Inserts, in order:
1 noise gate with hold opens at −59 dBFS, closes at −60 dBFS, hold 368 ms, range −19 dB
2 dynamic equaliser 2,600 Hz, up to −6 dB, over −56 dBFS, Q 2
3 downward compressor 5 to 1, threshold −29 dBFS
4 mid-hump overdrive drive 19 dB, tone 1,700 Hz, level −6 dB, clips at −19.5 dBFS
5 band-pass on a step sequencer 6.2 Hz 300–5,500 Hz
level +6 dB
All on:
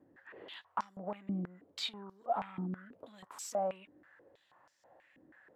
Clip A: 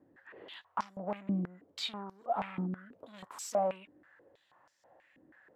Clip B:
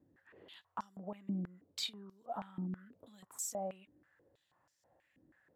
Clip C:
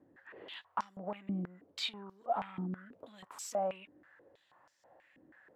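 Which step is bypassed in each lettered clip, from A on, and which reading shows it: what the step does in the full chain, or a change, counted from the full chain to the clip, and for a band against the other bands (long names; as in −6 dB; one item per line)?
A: 3, average gain reduction 3.5 dB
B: 4, 8 kHz band +9.0 dB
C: 2, change in momentary loudness spread +1 LU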